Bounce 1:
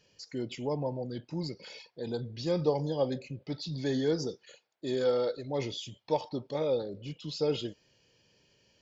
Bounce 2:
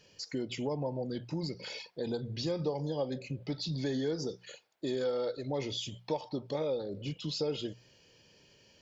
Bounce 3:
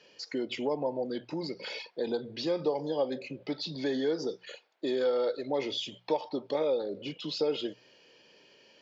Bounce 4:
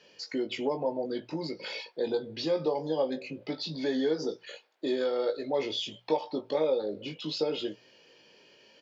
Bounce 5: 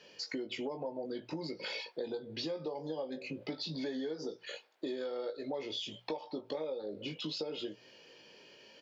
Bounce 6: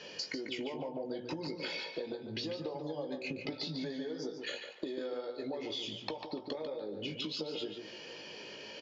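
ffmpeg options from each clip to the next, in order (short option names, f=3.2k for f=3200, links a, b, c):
-af "bandreject=f=60:t=h:w=6,bandreject=f=120:t=h:w=6,bandreject=f=180:t=h:w=6,acompressor=threshold=-38dB:ratio=3,volume=5dB"
-filter_complex "[0:a]acrossover=split=230 4900:gain=0.0794 1 0.141[a][b][c];[a][b][c]amix=inputs=3:normalize=0,volume=5dB"
-filter_complex "[0:a]asplit=2[a][b];[b]adelay=19,volume=-6dB[c];[a][c]amix=inputs=2:normalize=0"
-af "acompressor=threshold=-37dB:ratio=6,volume=1dB"
-filter_complex "[0:a]acompressor=threshold=-46dB:ratio=10,asplit=2[a][b];[b]adelay=145,lowpass=f=4k:p=1,volume=-6dB,asplit=2[c][d];[d]adelay=145,lowpass=f=4k:p=1,volume=0.28,asplit=2[e][f];[f]adelay=145,lowpass=f=4k:p=1,volume=0.28,asplit=2[g][h];[h]adelay=145,lowpass=f=4k:p=1,volume=0.28[i];[a][c][e][g][i]amix=inputs=5:normalize=0,volume=9.5dB" -ar 16000 -c:a libvorbis -b:a 96k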